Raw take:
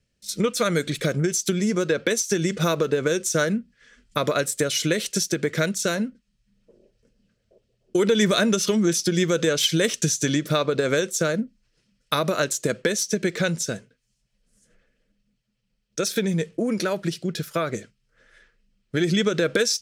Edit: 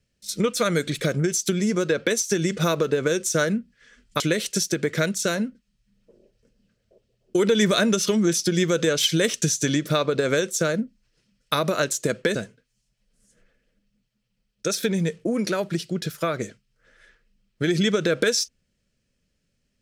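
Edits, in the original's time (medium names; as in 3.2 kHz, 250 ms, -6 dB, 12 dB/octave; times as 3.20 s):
4.20–4.80 s: delete
12.95–13.68 s: delete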